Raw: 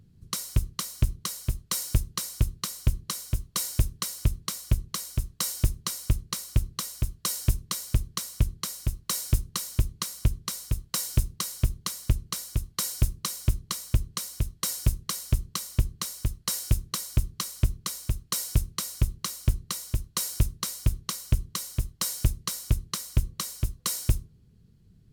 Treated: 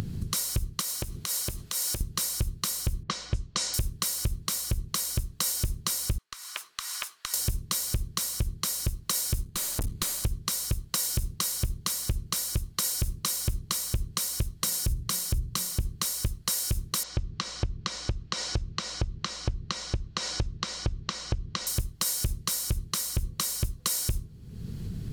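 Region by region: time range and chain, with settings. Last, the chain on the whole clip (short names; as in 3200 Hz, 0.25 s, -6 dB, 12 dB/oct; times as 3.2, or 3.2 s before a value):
0.81–2.01 compressor, threshold -34 dBFS + low shelf 190 Hz -11.5 dB
3.03–3.74 low-pass opened by the level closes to 1600 Hz, open at -24 dBFS + LPF 7200 Hz 24 dB/oct
6.18–7.34 HPF 1100 Hz 24 dB/oct + compressor 12:1, threshold -37 dBFS + tilt -4 dB/oct
9.43–10.24 notch 5500 Hz, Q 14 + tube stage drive 35 dB, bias 0.6
14.6–15.81 low shelf 190 Hz +6.5 dB + notches 60/120/180/240/300/360/420 Hz
17.03–21.67 Bessel low-pass 3900 Hz, order 6 + compressor 1.5:1, threshold -38 dBFS
whole clip: upward compressor, threshold -30 dBFS; limiter -20.5 dBFS; compressor, threshold -33 dBFS; gain +8.5 dB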